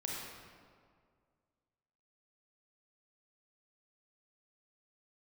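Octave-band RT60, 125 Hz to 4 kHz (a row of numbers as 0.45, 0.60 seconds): 2.2, 2.1, 2.1, 1.9, 1.5, 1.2 seconds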